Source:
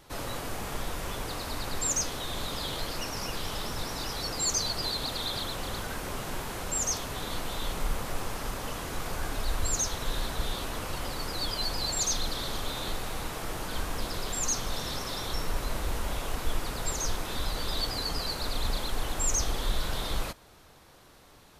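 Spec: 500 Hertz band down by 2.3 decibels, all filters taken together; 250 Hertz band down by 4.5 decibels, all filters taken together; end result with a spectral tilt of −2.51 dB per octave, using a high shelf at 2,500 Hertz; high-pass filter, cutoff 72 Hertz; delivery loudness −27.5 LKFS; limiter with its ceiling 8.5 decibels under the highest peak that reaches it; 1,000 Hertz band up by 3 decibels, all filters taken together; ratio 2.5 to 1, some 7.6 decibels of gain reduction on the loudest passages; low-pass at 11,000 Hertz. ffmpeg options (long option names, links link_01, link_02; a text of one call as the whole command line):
ffmpeg -i in.wav -af "highpass=72,lowpass=11000,equalizer=frequency=250:width_type=o:gain=-5.5,equalizer=frequency=500:width_type=o:gain=-3,equalizer=frequency=1000:width_type=o:gain=5.5,highshelf=frequency=2500:gain=-4,acompressor=threshold=-40dB:ratio=2.5,volume=16.5dB,alimiter=limit=-19.5dB:level=0:latency=1" out.wav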